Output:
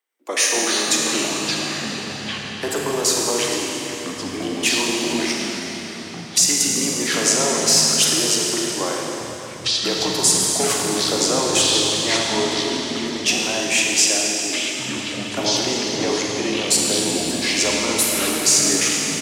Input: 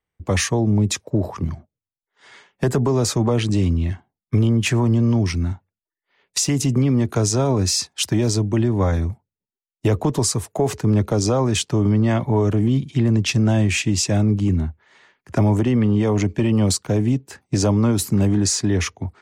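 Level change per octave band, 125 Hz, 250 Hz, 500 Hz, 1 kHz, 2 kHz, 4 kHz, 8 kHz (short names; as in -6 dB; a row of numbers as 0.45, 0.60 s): -17.0, -5.5, 0.0, +3.5, +8.0, +10.0, +9.5 dB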